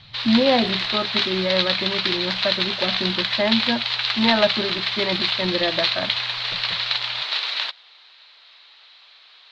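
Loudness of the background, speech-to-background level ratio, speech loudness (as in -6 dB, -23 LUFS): -21.5 LUFS, -3.0 dB, -24.5 LUFS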